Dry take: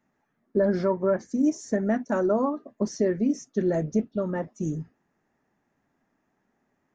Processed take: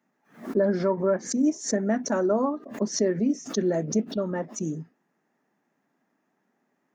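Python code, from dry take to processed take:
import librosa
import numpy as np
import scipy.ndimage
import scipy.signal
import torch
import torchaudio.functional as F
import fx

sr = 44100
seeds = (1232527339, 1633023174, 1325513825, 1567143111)

y = scipy.signal.sosfilt(scipy.signal.butter(4, 160.0, 'highpass', fs=sr, output='sos'), x)
y = fx.pre_swell(y, sr, db_per_s=150.0)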